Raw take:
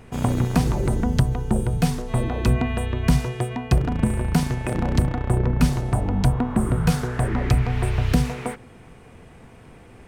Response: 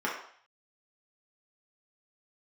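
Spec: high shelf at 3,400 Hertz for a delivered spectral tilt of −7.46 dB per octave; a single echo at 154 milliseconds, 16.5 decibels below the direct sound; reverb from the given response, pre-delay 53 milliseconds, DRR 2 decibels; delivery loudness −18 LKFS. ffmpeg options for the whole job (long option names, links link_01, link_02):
-filter_complex "[0:a]highshelf=frequency=3400:gain=-9,aecho=1:1:154:0.15,asplit=2[link_01][link_02];[1:a]atrim=start_sample=2205,adelay=53[link_03];[link_02][link_03]afir=irnorm=-1:irlink=0,volume=-11.5dB[link_04];[link_01][link_04]amix=inputs=2:normalize=0,volume=3.5dB"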